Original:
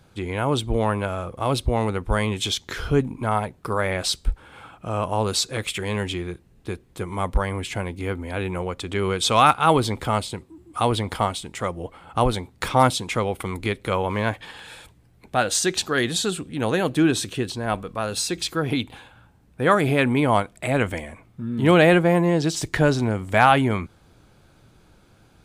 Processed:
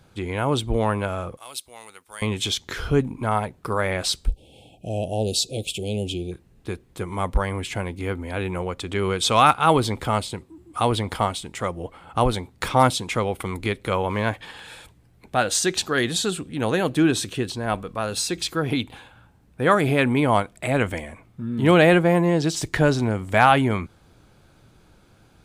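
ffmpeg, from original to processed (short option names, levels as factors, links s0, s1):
-filter_complex "[0:a]asettb=1/sr,asplit=3[s0][s1][s2];[s0]atrim=end=1.374[s3];[s1]atrim=start=1.37:end=2.22,asetpts=PTS-STARTPTS,afade=t=in:d=0.004:c=qsin,afade=t=out:st=0.846:d=0.004:c=qsin,aderivative[s4];[s2]atrim=start=2.216[s5];[s3][s4]acrossfade=d=0.004:c1=hsin:c2=qsin[s6];[s6][s5]acrossfade=d=0.004:c1=qsin:c2=hsin,asplit=3[s7][s8][s9];[s7]afade=t=out:st=4.26:d=0.02[s10];[s8]asuperstop=centerf=1400:order=12:qfactor=0.75,afade=t=in:st=4.26:d=0.02,afade=t=out:st=6.31:d=0.02[s11];[s9]afade=t=in:st=6.31:d=0.02[s12];[s10][s11][s12]amix=inputs=3:normalize=0"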